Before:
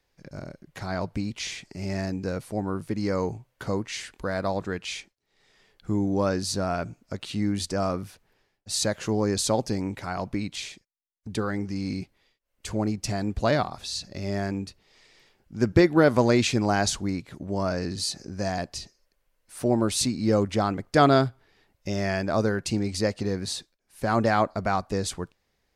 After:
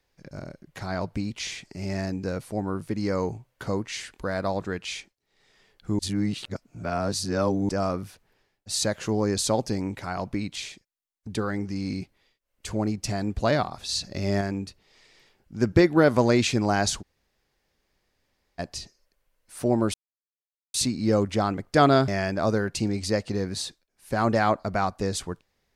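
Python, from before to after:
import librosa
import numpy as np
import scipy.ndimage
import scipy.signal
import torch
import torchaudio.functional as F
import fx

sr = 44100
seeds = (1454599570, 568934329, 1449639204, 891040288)

y = fx.edit(x, sr, fx.reverse_span(start_s=5.99, length_s=1.7),
    fx.clip_gain(start_s=13.89, length_s=0.52, db=4.0),
    fx.room_tone_fill(start_s=17.02, length_s=1.57, crossfade_s=0.02),
    fx.insert_silence(at_s=19.94, length_s=0.8),
    fx.cut(start_s=21.28, length_s=0.71), tone=tone)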